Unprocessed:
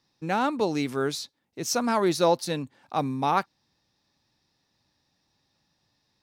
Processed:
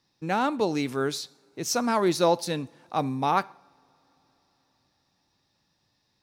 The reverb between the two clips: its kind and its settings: two-slope reverb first 0.6 s, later 4.6 s, from -22 dB, DRR 19 dB

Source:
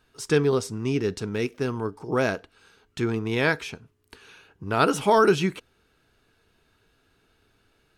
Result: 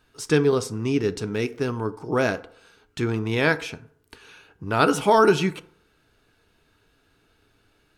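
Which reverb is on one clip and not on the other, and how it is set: FDN reverb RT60 0.65 s, low-frequency decay 0.8×, high-frequency decay 0.4×, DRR 12.5 dB; gain +1.5 dB

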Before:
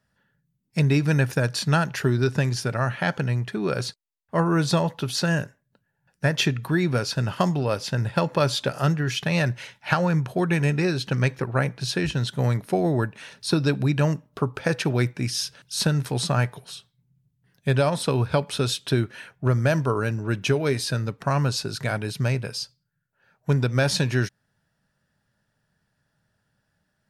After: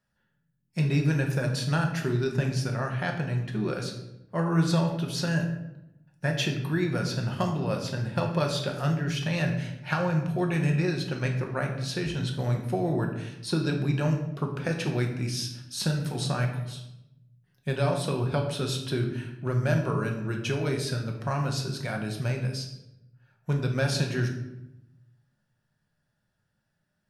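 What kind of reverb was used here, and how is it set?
shoebox room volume 270 m³, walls mixed, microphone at 0.94 m; gain -7.5 dB

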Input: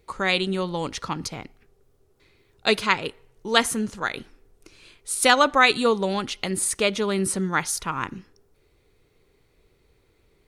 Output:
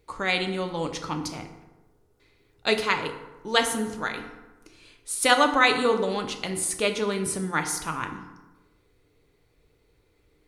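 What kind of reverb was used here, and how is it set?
FDN reverb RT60 1.1 s, low-frequency decay 1.05×, high-frequency decay 0.55×, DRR 4.5 dB; gain -3.5 dB

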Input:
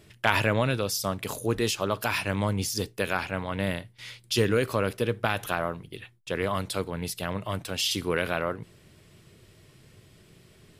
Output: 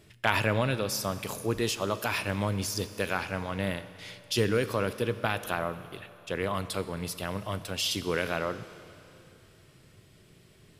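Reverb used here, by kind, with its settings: Schroeder reverb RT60 2.9 s, combs from 29 ms, DRR 13 dB; gain -2.5 dB

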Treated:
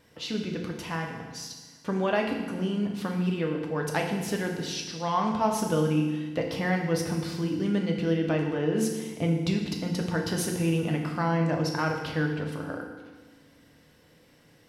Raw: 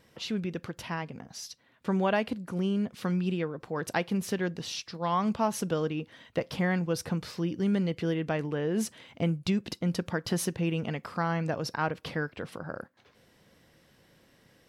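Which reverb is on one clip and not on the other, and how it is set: FDN reverb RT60 1.3 s, low-frequency decay 1.3×, high-frequency decay 1×, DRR 1 dB

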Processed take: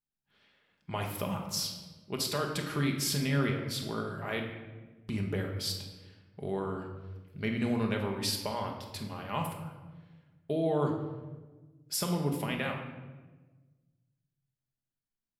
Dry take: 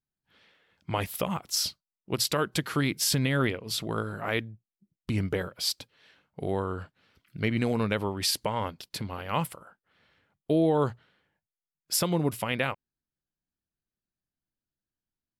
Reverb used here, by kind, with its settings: shoebox room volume 870 m³, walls mixed, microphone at 1.3 m; gain -7 dB

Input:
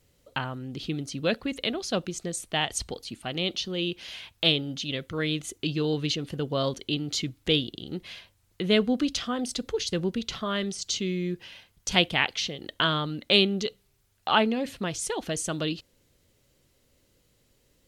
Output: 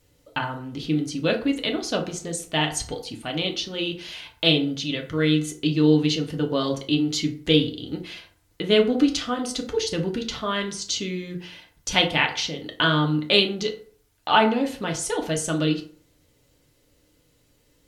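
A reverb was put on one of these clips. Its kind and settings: FDN reverb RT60 0.49 s, low-frequency decay 0.9×, high-frequency decay 0.55×, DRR 1.5 dB; gain +1.5 dB

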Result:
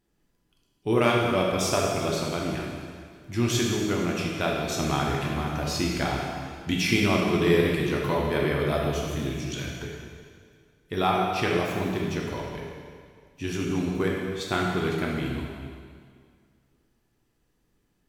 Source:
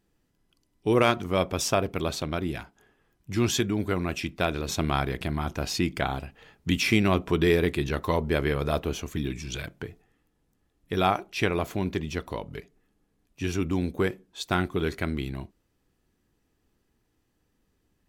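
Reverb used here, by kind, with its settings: plate-style reverb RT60 2 s, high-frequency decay 0.95×, DRR -2.5 dB; gain -3 dB

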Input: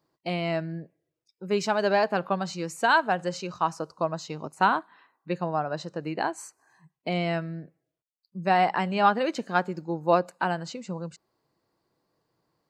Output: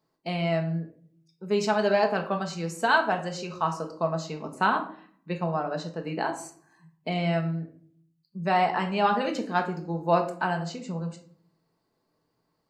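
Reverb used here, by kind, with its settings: shoebox room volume 580 m³, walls furnished, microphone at 1.5 m; gain -2 dB

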